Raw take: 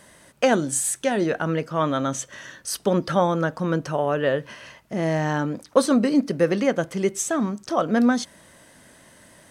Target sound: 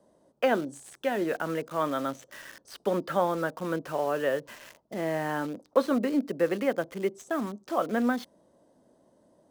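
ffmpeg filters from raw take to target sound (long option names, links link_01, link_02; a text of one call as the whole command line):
ffmpeg -i in.wav -filter_complex "[0:a]acrossover=split=220 3800:gain=0.224 1 0.0794[link_01][link_02][link_03];[link_01][link_02][link_03]amix=inputs=3:normalize=0,acrossover=split=850|5300[link_04][link_05][link_06];[link_05]acrusher=bits=6:mix=0:aa=0.000001[link_07];[link_04][link_07][link_06]amix=inputs=3:normalize=0,volume=-5dB" out.wav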